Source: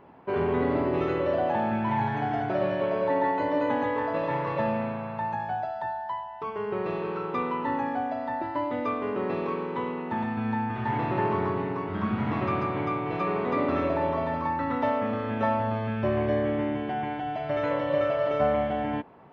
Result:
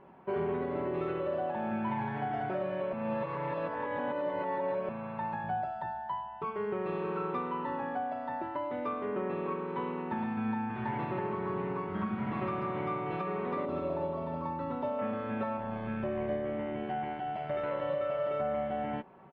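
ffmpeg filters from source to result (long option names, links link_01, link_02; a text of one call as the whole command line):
ffmpeg -i in.wav -filter_complex "[0:a]asettb=1/sr,asplit=3[link_01][link_02][link_03];[link_01]atrim=end=5.444[link_04];[link_02]atrim=start=5.44:end=6.45,asetpts=PTS-STARTPTS,afade=type=in:duration=0.004:curve=qsin,afade=type=out:start_time=1.006:duration=0.004:curve=qsin,lowshelf=frequency=240:gain=9[link_05];[link_03]atrim=start=6.446[link_06];[link_04][link_05]acrossfade=duration=0.004:curve1=hsin:curve2=qsin[link_07];[link_07][link_06]acrossfade=duration=0.004:curve1=qsin:curve2=hsin,asettb=1/sr,asplit=3[link_08][link_09][link_10];[link_08]atrim=end=9.054[link_11];[link_09]atrim=start=9.05:end=9.66,asetpts=PTS-STARTPTS,afade=type=in:duration=0.004:curve=qsin,afade=type=out:start_time=0.606:duration=0.004:curve=qsin,lowpass=3500[link_12];[link_10]atrim=start=9.656[link_13];[link_11][link_12]acrossfade=duration=0.004:curve1=hsin:curve2=qsin[link_14];[link_14][link_13]acrossfade=duration=0.004:curve1=qsin:curve2=hsin,asettb=1/sr,asplit=3[link_15][link_16][link_17];[link_15]atrim=end=13.654[link_18];[link_16]atrim=start=13.65:end=14.99,asetpts=PTS-STARTPTS,afade=type=in:duration=0.004:curve=qsin,afade=type=out:start_time=1.336:duration=0.004:curve=qsin,equalizer=frequency=1800:width=1.1:gain=-11[link_19];[link_17]atrim=start=14.986[link_20];[link_18][link_19]acrossfade=duration=0.004:curve1=hsin:curve2=qsin[link_21];[link_21][link_20]acrossfade=duration=0.004:curve1=qsin:curve2=hsin,asettb=1/sr,asplit=3[link_22][link_23][link_24];[link_22]atrim=end=15.574[link_25];[link_23]atrim=start=15.57:end=17.82,asetpts=PTS-STARTPTS,afade=type=in:duration=0.004:curve=qsin,afade=type=out:start_time=2.246:duration=0.004:curve=qsin,tremolo=f=79:d=0.462[link_26];[link_24]atrim=start=17.816[link_27];[link_25][link_26]acrossfade=duration=0.004:curve1=hsin:curve2=qsin[link_28];[link_28][link_27]acrossfade=duration=0.004:curve1=qsin:curve2=hsin,asplit=3[link_29][link_30][link_31];[link_29]atrim=end=2.932[link_32];[link_30]atrim=start=2.928:end=4.892,asetpts=PTS-STARTPTS,areverse[link_33];[link_31]atrim=start=4.888[link_34];[link_32][link_33]acrossfade=duration=0.004:curve1=hsin:curve2=hsin[link_35];[link_35][link_34]acrossfade=duration=0.004:curve1=hsin:curve2=hsin,lowpass=3300,aecho=1:1:5.3:0.47,alimiter=limit=-20.5dB:level=0:latency=1:release=466,volume=-4dB" out.wav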